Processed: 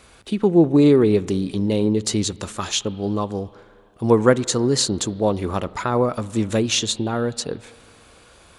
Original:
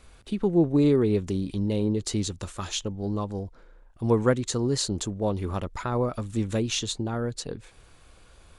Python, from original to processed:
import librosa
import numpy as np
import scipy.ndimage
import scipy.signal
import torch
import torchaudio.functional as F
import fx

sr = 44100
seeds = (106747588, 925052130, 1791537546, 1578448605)

y = fx.highpass(x, sr, hz=170.0, slope=6)
y = fx.rev_spring(y, sr, rt60_s=2.4, pass_ms=(37, 55), chirp_ms=20, drr_db=19.5)
y = F.gain(torch.from_numpy(y), 8.0).numpy()